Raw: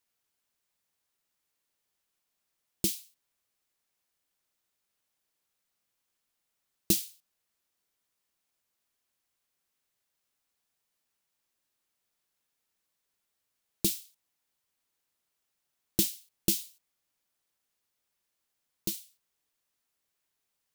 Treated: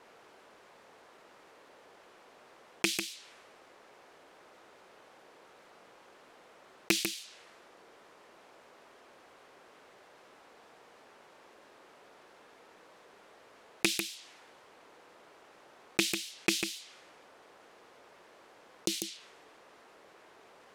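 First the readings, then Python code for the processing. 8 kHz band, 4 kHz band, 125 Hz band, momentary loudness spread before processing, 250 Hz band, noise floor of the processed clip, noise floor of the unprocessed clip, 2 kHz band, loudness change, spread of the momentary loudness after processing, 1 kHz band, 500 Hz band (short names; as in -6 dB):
-2.0 dB, +4.5 dB, -6.5 dB, 13 LU, 0.0 dB, -59 dBFS, -82 dBFS, +17.0 dB, -2.0 dB, 18 LU, +15.0 dB, +4.0 dB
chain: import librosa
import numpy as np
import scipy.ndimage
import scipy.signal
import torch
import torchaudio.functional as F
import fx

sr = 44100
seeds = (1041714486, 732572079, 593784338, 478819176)

y = fx.rattle_buzz(x, sr, strikes_db=-29.0, level_db=-13.0)
y = fx.peak_eq(y, sr, hz=440.0, db=7.5, octaves=1.4)
y = fx.env_lowpass_down(y, sr, base_hz=2600.0, full_db=-34.5)
y = fx.riaa(y, sr, side='recording')
y = y + 10.0 ** (-14.0 / 20.0) * np.pad(y, (int(146 * sr / 1000.0), 0))[:len(y)]
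y = fx.env_lowpass(y, sr, base_hz=1100.0, full_db=-39.0)
y = fx.env_flatten(y, sr, amount_pct=50)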